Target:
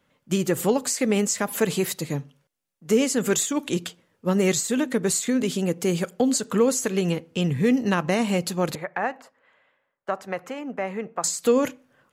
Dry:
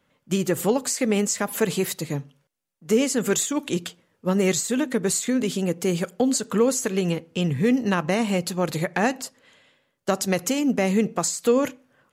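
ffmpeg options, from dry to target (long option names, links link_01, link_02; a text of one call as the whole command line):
ffmpeg -i in.wav -filter_complex "[0:a]asettb=1/sr,asplit=3[link_01][link_02][link_03];[link_01]atrim=end=8.754[link_04];[link_02]atrim=start=8.75:end=11.24,asetpts=PTS-STARTPTS,afade=type=in:duration=0.004:curve=qsin,afade=type=out:start_time=2.486:duration=0.004:curve=qsin,acrossover=split=560 2100:gain=0.2 1 0.0708[link_05][link_06][link_07];[link_05][link_06][link_07]amix=inputs=3:normalize=0[link_08];[link_03]atrim=start=11.236[link_09];[link_04][link_08]acrossfade=duration=0.004:curve1=hsin:curve2=qsin[link_10];[link_10][link_09]acrossfade=duration=0.004:curve1=qsin:curve2=hsin" out.wav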